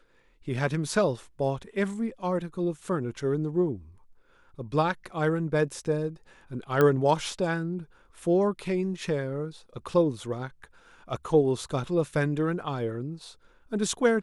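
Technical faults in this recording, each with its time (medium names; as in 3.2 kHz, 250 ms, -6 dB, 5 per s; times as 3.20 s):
6.81 s: pop -11 dBFS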